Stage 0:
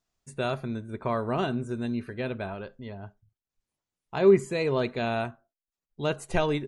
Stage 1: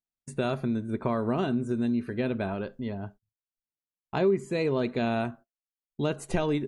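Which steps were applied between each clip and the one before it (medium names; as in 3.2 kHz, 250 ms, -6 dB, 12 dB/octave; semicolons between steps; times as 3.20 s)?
peaking EQ 250 Hz +7 dB 1.4 oct; compression 3:1, threshold -27 dBFS, peak gain reduction 13 dB; gate -49 dBFS, range -23 dB; trim +2 dB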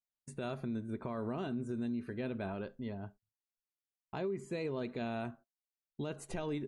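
peak limiter -22.5 dBFS, peak gain reduction 7 dB; trim -7.5 dB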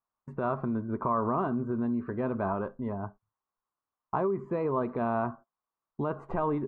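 resonant low-pass 1.1 kHz, resonance Q 4.9; trim +6.5 dB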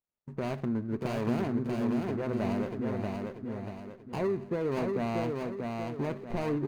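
median filter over 41 samples; on a send: feedback delay 637 ms, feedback 41%, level -3.5 dB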